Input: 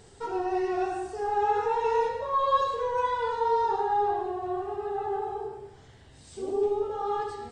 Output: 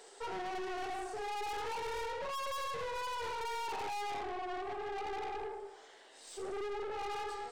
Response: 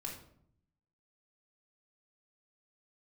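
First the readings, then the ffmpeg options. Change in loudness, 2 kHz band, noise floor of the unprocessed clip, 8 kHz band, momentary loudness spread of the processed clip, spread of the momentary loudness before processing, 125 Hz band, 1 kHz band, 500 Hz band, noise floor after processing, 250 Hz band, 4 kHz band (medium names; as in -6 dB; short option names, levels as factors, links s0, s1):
-11.5 dB, -3.0 dB, -53 dBFS, no reading, 6 LU, 8 LU, -10.0 dB, -11.5 dB, -12.5 dB, -57 dBFS, -12.5 dB, +0.5 dB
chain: -af "highpass=f=410:w=0.5412,highpass=f=410:w=1.3066,aeval=exprs='(tanh(100*val(0)+0.35)-tanh(0.35))/100':c=same,volume=1.26"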